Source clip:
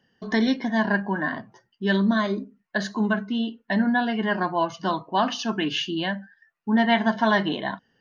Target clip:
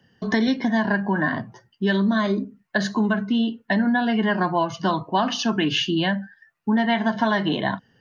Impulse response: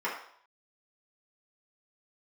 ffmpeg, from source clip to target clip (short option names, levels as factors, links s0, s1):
-filter_complex "[0:a]equalizer=f=110:w=1.1:g=8.5,acrossover=split=210|1100[s0][s1][s2];[s0]alimiter=level_in=1.5:limit=0.0631:level=0:latency=1,volume=0.668[s3];[s3][s1][s2]amix=inputs=3:normalize=0,acompressor=threshold=0.0794:ratio=6,volume=1.78"